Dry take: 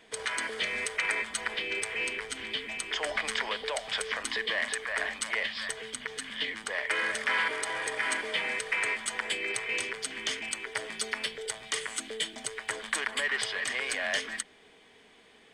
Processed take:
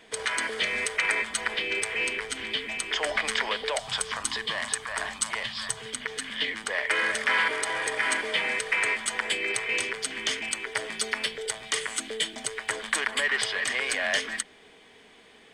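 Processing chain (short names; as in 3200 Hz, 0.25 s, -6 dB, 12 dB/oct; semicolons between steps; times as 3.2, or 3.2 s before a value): 3.79–5.86 graphic EQ 125/250/500/1000/2000/8000 Hz +12/-4/-8/+5/-8/+4 dB; gain +4 dB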